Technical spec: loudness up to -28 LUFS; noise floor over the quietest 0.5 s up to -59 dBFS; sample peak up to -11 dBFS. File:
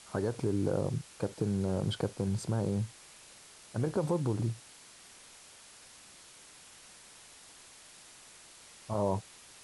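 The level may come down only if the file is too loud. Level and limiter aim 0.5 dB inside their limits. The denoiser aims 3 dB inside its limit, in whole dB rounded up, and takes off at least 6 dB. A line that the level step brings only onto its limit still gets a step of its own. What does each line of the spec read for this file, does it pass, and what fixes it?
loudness -33.5 LUFS: OK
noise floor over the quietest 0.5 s -55 dBFS: fail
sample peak -17.0 dBFS: OK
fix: denoiser 7 dB, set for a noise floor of -55 dBFS

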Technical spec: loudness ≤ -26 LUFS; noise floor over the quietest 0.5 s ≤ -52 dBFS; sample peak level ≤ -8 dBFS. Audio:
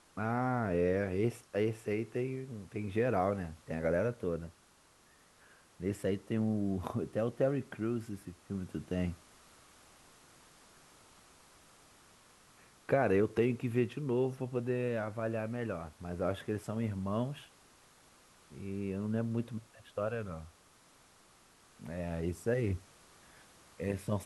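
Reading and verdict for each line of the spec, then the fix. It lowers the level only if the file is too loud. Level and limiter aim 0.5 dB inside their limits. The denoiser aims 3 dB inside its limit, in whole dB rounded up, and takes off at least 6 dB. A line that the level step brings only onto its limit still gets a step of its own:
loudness -35.5 LUFS: OK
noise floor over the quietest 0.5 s -65 dBFS: OK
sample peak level -16.0 dBFS: OK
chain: none

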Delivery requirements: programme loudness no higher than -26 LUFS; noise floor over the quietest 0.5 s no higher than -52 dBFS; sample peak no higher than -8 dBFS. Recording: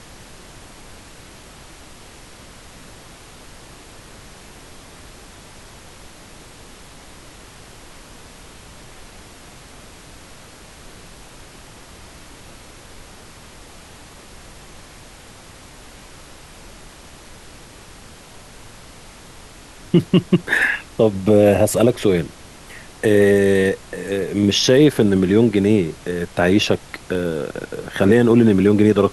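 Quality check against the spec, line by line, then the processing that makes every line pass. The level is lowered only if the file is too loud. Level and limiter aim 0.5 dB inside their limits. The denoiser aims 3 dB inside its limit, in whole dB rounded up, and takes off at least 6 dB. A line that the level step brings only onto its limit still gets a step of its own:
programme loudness -17.0 LUFS: fail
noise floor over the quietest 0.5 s -42 dBFS: fail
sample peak -2.5 dBFS: fail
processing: denoiser 6 dB, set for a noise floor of -42 dBFS; gain -9.5 dB

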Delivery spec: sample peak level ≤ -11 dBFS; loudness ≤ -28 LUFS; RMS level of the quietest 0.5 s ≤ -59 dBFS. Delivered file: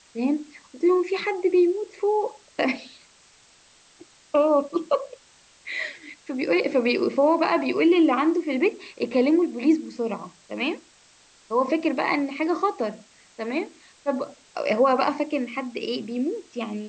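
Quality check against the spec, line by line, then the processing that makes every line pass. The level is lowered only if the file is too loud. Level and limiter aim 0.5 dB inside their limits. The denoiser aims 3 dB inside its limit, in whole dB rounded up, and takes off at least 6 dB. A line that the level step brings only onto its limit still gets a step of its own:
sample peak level -9.0 dBFS: fail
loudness -24.0 LUFS: fail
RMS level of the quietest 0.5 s -56 dBFS: fail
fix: gain -4.5 dB

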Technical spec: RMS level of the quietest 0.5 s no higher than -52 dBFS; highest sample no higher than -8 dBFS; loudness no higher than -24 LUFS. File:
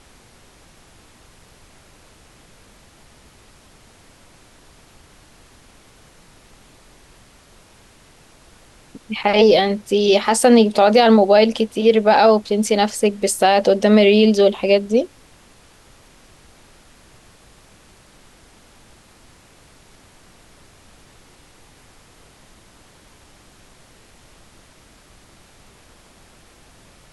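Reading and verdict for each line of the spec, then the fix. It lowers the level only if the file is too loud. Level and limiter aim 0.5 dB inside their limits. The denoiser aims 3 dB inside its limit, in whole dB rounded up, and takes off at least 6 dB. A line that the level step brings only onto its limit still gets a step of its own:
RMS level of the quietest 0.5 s -49 dBFS: fail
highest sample -3.0 dBFS: fail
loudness -15.0 LUFS: fail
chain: gain -9.5 dB

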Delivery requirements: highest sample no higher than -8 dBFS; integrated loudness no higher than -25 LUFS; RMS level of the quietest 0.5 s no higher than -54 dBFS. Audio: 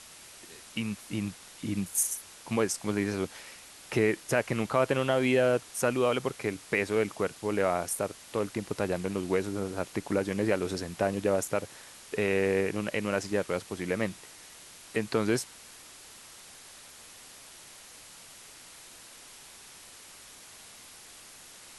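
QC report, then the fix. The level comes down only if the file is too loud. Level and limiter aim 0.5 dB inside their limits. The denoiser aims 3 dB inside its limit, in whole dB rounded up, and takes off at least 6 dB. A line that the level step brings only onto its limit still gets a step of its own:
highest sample -11.5 dBFS: OK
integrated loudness -30.0 LUFS: OK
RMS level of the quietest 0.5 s -50 dBFS: fail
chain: denoiser 7 dB, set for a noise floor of -50 dBFS

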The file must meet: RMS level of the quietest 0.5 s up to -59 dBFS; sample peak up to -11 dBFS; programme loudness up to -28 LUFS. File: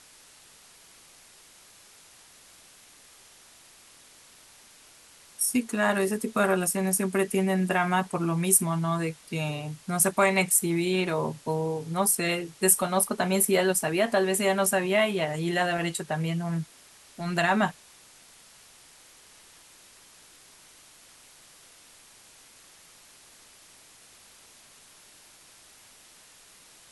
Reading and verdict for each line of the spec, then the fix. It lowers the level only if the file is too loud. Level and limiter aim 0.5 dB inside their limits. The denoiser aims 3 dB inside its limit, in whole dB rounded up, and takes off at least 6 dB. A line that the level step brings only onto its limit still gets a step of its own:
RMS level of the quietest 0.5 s -54 dBFS: fail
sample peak -7.5 dBFS: fail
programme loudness -25.5 LUFS: fail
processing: denoiser 6 dB, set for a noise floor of -54 dBFS; gain -3 dB; limiter -11.5 dBFS

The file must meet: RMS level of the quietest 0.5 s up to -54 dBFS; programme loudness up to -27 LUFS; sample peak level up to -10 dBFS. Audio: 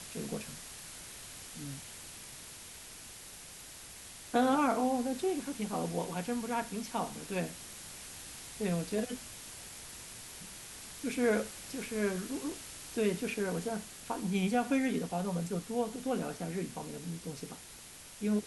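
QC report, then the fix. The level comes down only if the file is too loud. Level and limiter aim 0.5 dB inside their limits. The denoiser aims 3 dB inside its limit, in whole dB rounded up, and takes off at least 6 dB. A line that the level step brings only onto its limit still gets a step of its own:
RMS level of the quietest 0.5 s -51 dBFS: fail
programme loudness -36.0 LUFS: OK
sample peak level -16.5 dBFS: OK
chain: denoiser 6 dB, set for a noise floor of -51 dBFS

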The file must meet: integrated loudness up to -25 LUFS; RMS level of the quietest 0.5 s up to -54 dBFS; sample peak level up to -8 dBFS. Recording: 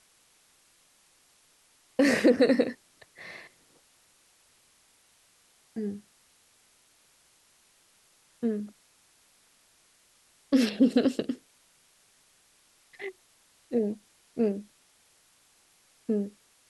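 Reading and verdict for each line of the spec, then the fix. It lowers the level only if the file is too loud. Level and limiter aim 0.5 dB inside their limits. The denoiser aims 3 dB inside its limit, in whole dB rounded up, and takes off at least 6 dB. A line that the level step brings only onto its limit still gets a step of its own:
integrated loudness -28.0 LUFS: OK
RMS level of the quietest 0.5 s -64 dBFS: OK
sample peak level -10.5 dBFS: OK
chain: none

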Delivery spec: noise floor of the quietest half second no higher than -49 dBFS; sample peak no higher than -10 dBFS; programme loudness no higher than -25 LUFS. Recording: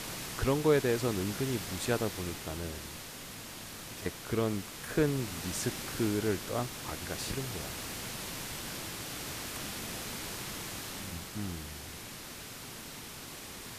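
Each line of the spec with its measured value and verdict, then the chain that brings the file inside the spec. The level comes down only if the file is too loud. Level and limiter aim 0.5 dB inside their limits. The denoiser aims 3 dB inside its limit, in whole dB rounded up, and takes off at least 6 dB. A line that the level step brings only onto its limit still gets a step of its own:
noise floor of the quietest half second -45 dBFS: fail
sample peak -15.5 dBFS: OK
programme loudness -35.0 LUFS: OK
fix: denoiser 7 dB, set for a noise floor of -45 dBFS

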